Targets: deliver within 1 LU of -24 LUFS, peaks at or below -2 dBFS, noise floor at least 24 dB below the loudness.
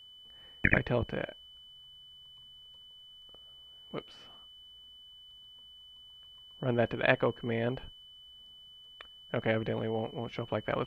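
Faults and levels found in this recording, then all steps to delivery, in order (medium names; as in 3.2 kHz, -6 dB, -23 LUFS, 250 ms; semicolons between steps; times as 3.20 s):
steady tone 3 kHz; tone level -51 dBFS; loudness -32.5 LUFS; peak level -8.0 dBFS; loudness target -24.0 LUFS
-> band-stop 3 kHz, Q 30; trim +8.5 dB; peak limiter -2 dBFS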